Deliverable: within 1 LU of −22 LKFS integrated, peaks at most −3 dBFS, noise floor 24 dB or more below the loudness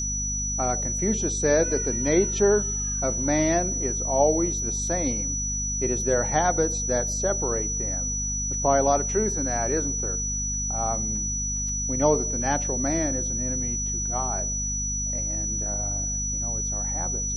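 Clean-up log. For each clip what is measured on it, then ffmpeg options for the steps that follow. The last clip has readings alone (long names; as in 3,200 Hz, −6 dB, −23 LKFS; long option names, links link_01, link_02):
mains hum 50 Hz; hum harmonics up to 250 Hz; level of the hum −29 dBFS; interfering tone 5,900 Hz; level of the tone −27 dBFS; integrated loudness −24.0 LKFS; sample peak −8.0 dBFS; target loudness −22.0 LKFS
→ -af "bandreject=frequency=50:width_type=h:width=6,bandreject=frequency=100:width_type=h:width=6,bandreject=frequency=150:width_type=h:width=6,bandreject=frequency=200:width_type=h:width=6,bandreject=frequency=250:width_type=h:width=6"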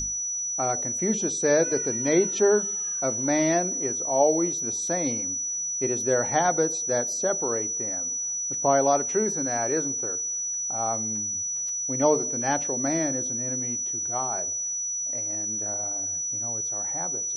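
mains hum none found; interfering tone 5,900 Hz; level of the tone −27 dBFS
→ -af "bandreject=frequency=5900:width=30"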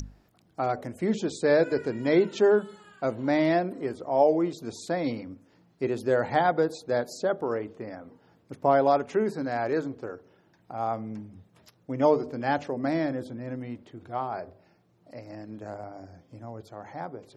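interfering tone none found; integrated loudness −27.0 LKFS; sample peak −9.5 dBFS; target loudness −22.0 LKFS
→ -af "volume=5dB"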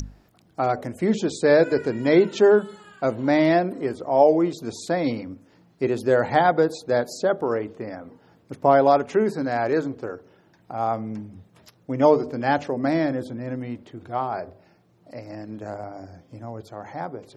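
integrated loudness −22.0 LKFS; sample peak −4.5 dBFS; background noise floor −59 dBFS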